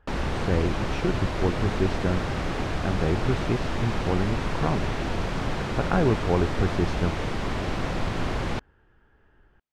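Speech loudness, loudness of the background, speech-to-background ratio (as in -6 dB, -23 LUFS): -28.5 LUFS, -29.5 LUFS, 1.0 dB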